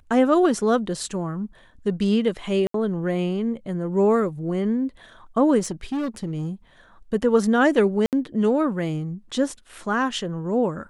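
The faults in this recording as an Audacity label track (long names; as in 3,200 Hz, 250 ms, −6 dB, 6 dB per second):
2.670000	2.740000	drop-out 73 ms
5.590000	6.480000	clipping −22.5 dBFS
8.060000	8.130000	drop-out 68 ms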